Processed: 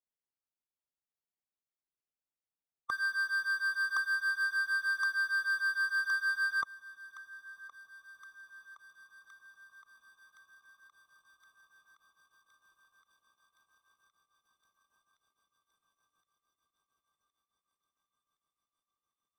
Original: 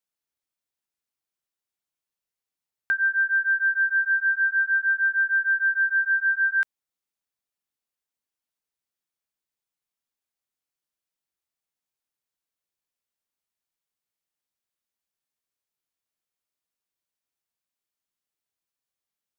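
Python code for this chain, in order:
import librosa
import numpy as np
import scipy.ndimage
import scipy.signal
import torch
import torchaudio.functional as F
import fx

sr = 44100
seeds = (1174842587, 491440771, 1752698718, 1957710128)

y = scipy.signal.medfilt(x, 15)
y = fx.echo_thinned(y, sr, ms=1067, feedback_pct=80, hz=1200.0, wet_db=-21.0)
y = fx.formant_shift(y, sr, semitones=-5)
y = y * 10.0 ** (-8.0 / 20.0)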